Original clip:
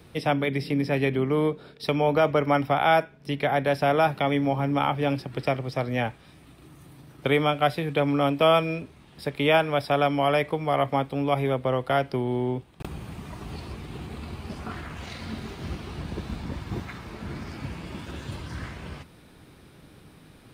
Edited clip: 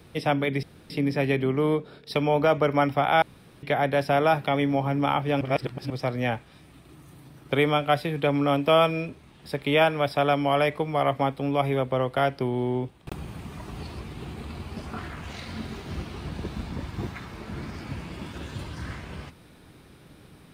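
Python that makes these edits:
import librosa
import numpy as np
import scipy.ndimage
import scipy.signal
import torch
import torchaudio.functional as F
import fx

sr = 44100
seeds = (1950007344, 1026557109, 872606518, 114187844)

y = fx.edit(x, sr, fx.insert_room_tone(at_s=0.63, length_s=0.27),
    fx.room_tone_fill(start_s=2.95, length_s=0.41),
    fx.reverse_span(start_s=5.14, length_s=0.49), tone=tone)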